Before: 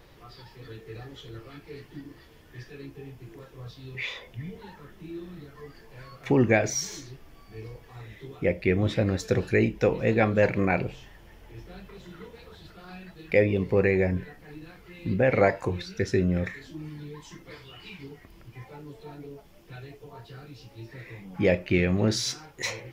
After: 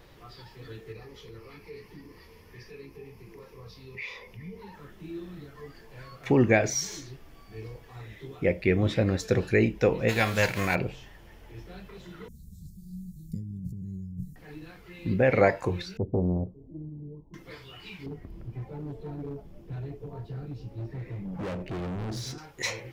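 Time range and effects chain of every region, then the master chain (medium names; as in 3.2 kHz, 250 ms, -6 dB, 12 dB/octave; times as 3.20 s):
0.92–4.74 s: rippled EQ curve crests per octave 0.85, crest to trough 9 dB + compression 1.5:1, threshold -47 dBFS
10.08–10.74 s: formants flattened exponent 0.6 + peaking EQ 320 Hz -6 dB 2.6 oct + band-stop 1.2 kHz, Q 13
12.28–14.36 s: elliptic band-stop 190–7100 Hz, stop band 50 dB + compressor with a negative ratio -36 dBFS
15.97–17.34 s: Gaussian low-pass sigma 16 samples + loudspeaker Doppler distortion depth 0.81 ms
18.06–22.38 s: tilt shelf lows +9.5 dB, about 730 Hz + compression 2:1, threshold -23 dBFS + overload inside the chain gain 32 dB
whole clip: none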